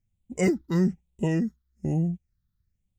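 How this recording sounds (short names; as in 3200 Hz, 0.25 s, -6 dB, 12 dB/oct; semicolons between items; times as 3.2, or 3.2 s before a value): phasing stages 6, 1.1 Hz, lowest notch 650–1500 Hz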